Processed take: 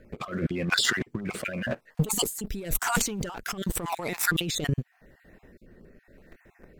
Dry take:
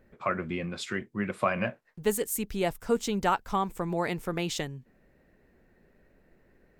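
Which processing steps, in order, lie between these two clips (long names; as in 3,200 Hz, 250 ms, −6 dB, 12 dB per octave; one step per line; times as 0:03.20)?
time-frequency cells dropped at random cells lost 26%
0:02.19–0:04.28: high-shelf EQ 5,400 Hz +5.5 dB
leveller curve on the samples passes 2
compressor whose output falls as the input rises −35 dBFS, ratio −1
rotating-speaker cabinet horn 0.9 Hz
level +7.5 dB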